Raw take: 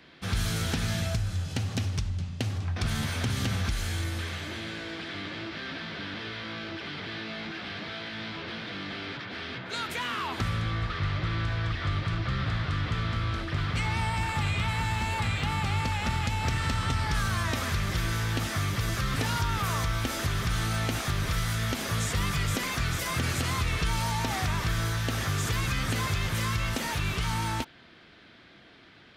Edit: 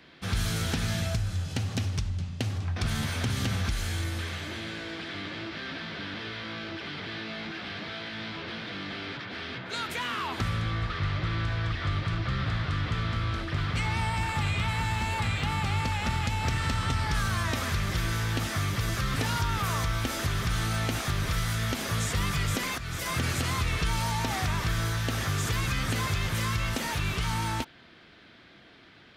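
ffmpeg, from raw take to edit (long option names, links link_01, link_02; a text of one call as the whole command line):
ffmpeg -i in.wav -filter_complex "[0:a]asplit=2[link_01][link_02];[link_01]atrim=end=22.78,asetpts=PTS-STARTPTS,afade=type=out:start_time=22.776:duration=0.004:curve=hsin:silence=0.237137[link_03];[link_02]atrim=start=22.78,asetpts=PTS-STARTPTS,afade=type=in:duration=0.31:silence=0.237137[link_04];[link_03][link_04]concat=n=2:v=0:a=1" out.wav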